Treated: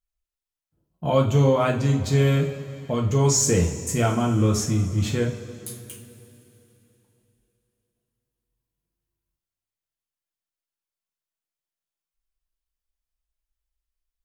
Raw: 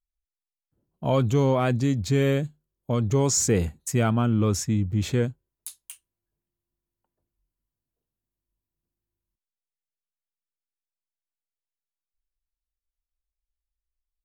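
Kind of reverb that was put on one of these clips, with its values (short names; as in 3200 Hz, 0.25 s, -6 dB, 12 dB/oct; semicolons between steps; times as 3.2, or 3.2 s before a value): two-slope reverb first 0.36 s, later 3.3 s, from -18 dB, DRR -1 dB; gain -1 dB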